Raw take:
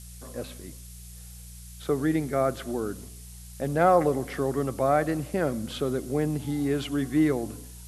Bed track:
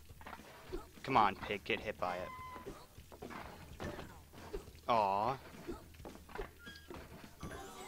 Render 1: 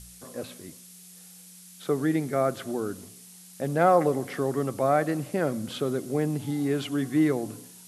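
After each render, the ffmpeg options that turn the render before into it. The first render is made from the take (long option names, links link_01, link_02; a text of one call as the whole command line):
ffmpeg -i in.wav -af "bandreject=frequency=60:width_type=h:width=4,bandreject=frequency=120:width_type=h:width=4" out.wav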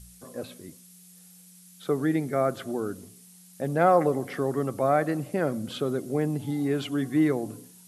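ffmpeg -i in.wav -af "afftdn=noise_reduction=6:noise_floor=-49" out.wav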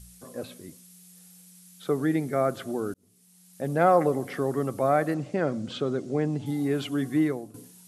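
ffmpeg -i in.wav -filter_complex "[0:a]asettb=1/sr,asplit=3[link_01][link_02][link_03];[link_01]atrim=end=5.144[link_04];[link_02]atrim=start=5.14:end=6.46,asetpts=PTS-STARTPTS,afade=type=in:duration=0.004:curve=qsin,afade=type=out:start_time=1.316:duration=0.004:curve=qsin,lowpass=frequency=7200:width=0.5412,lowpass=frequency=7200:width=1.3066[link_05];[link_03]atrim=start=6.456[link_06];[link_04][link_05]acrossfade=duration=0.004:curve1=hsin:curve2=qsin[link_07];[link_07][link_06]acrossfade=duration=0.004:curve1=qsin:curve2=hsin,asplit=3[link_08][link_09][link_10];[link_08]atrim=end=2.94,asetpts=PTS-STARTPTS,afade=type=out:start_time=2.936:duration=0.004:curve=hsin[link_11];[link_09]atrim=start=2.94:end=7.54,asetpts=PTS-STARTPTS,afade=type=in:duration=0.77,afade=type=out:start_time=4.2:duration=0.4:silence=0.188365[link_12];[link_10]atrim=start=7.54,asetpts=PTS-STARTPTS,afade=type=in:duration=0.004:curve=hsin:silence=0.188365[link_13];[link_11][link_12][link_13]concat=n=3:v=0:a=1" out.wav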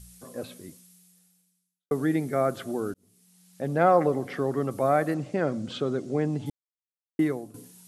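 ffmpeg -i in.wav -filter_complex "[0:a]asettb=1/sr,asplit=3[link_01][link_02][link_03];[link_01]atrim=end=2.914[link_04];[link_02]atrim=start=2.91:end=4.71,asetpts=PTS-STARTPTS,afade=type=in:duration=0.004:curve=qsin,afade=type=out:start_time=1.796:duration=0.004:curve=qsin,acrossover=split=6400[link_05][link_06];[link_06]acompressor=threshold=-59dB:ratio=4:attack=1:release=60[link_07];[link_05][link_07]amix=inputs=2:normalize=0[link_08];[link_03]atrim=start=4.706[link_09];[link_04][link_08]acrossfade=duration=0.004:curve1=hsin:curve2=qsin[link_10];[link_10][link_09]acrossfade=duration=0.004:curve1=qsin:curve2=hsin,asplit=4[link_11][link_12][link_13][link_14];[link_11]atrim=end=1.91,asetpts=PTS-STARTPTS,afade=type=out:start_time=0.67:duration=1.24:curve=qua[link_15];[link_12]atrim=start=1.91:end=6.5,asetpts=PTS-STARTPTS,afade=type=in:duration=0.004:curve=hsin,afade=type=out:start_time=4.586:duration=0.004:curve=hsin[link_16];[link_13]atrim=start=6.5:end=7.19,asetpts=PTS-STARTPTS,volume=0[link_17];[link_14]atrim=start=7.19,asetpts=PTS-STARTPTS,afade=type=in:duration=0.004:curve=hsin[link_18];[link_15][link_16][link_17][link_18]concat=n=4:v=0:a=1" out.wav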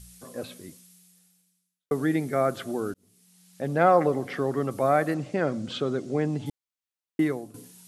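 ffmpeg -i in.wav -af "equalizer=frequency=3000:width=0.43:gain=3" out.wav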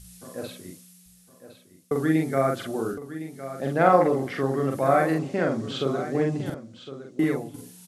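ffmpeg -i in.wav -filter_complex "[0:a]asplit=2[link_01][link_02];[link_02]adelay=44,volume=-2.5dB[link_03];[link_01][link_03]amix=inputs=2:normalize=0,aecho=1:1:1060:0.224" out.wav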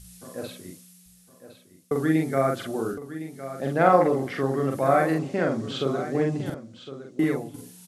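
ffmpeg -i in.wav -af anull out.wav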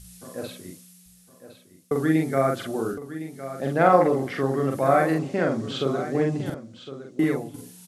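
ffmpeg -i in.wav -af "volume=1dB,alimiter=limit=-3dB:level=0:latency=1" out.wav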